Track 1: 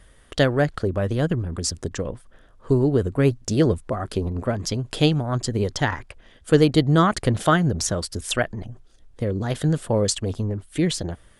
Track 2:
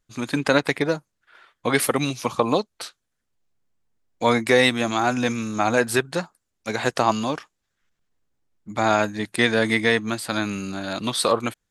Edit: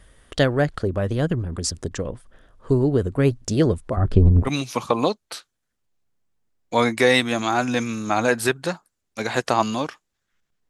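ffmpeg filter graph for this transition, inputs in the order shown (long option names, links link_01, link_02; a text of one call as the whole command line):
ffmpeg -i cue0.wav -i cue1.wav -filter_complex "[0:a]asettb=1/sr,asplit=3[link_01][link_02][link_03];[link_01]atrim=end=3.974[link_04];[link_02]atrim=start=3.97:end=4.49,asetpts=PTS-STARTPTS,afade=type=in:duration=0.004:curve=qsin,afade=type=out:start_time=0.516:duration=0.004:curve=qsin,aemphasis=mode=reproduction:type=riaa[link_05];[link_03]atrim=start=4.486[link_06];[link_04][link_05]acrossfade=duration=0.004:curve1=hsin:curve2=qsin[link_07];[link_07][link_06]acrossfade=duration=0.004:curve1=qsin:curve2=hsin,apad=whole_dur=10.69,atrim=end=10.69,atrim=end=4.49,asetpts=PTS-STARTPTS[link_08];[1:a]atrim=start=1.92:end=8.18,asetpts=PTS-STARTPTS[link_09];[link_08][link_09]acrossfade=duration=0.06:curve1=tri:curve2=tri" out.wav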